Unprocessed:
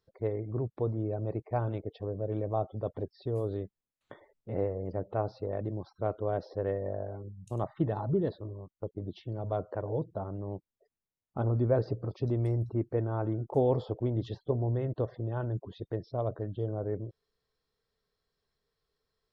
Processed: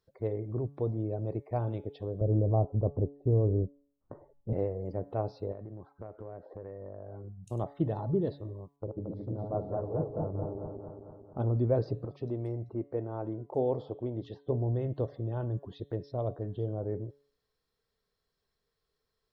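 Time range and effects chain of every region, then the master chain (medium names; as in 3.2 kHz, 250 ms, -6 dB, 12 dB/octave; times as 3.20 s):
2.21–4.53 s: low-pass 1.2 kHz 24 dB/octave + tilt EQ -3 dB/octave
5.52–7.44 s: low-pass 2 kHz 24 dB/octave + compression, threshold -39 dBFS
8.76–11.40 s: backward echo that repeats 112 ms, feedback 75%, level -2.5 dB + Butterworth band-stop 2.8 kHz, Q 0.84 + distance through air 450 m
12.05–14.48 s: low-pass 1.9 kHz 6 dB/octave + bass shelf 190 Hz -10.5 dB
whole clip: de-hum 141.8 Hz, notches 29; dynamic bell 1.5 kHz, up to -7 dB, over -52 dBFS, Q 1.1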